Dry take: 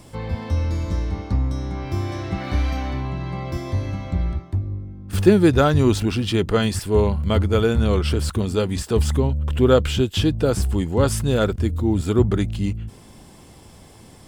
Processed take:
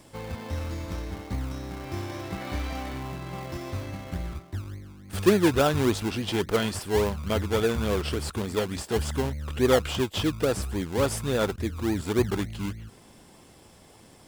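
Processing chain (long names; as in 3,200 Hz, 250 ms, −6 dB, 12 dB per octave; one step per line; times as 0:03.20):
in parallel at −5 dB: sample-and-hold swept by an LFO 29×, swing 60% 3.5 Hz
on the sum: low-shelf EQ 240 Hz −10.5 dB
level −5.5 dB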